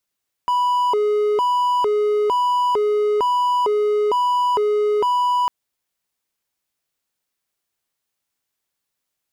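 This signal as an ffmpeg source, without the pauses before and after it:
-f lavfi -i "aevalsrc='0.211*(1-4*abs(mod((702*t+283/1.1*(0.5-abs(mod(1.1*t,1)-0.5)))+0.25,1)-0.5))':d=5:s=44100"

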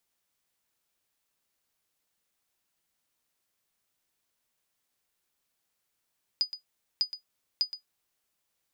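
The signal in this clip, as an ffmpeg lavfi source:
-f lavfi -i "aevalsrc='0.141*(sin(2*PI*4950*mod(t,0.6))*exp(-6.91*mod(t,0.6)/0.12)+0.237*sin(2*PI*4950*max(mod(t,0.6)-0.12,0))*exp(-6.91*max(mod(t,0.6)-0.12,0)/0.12))':d=1.8:s=44100"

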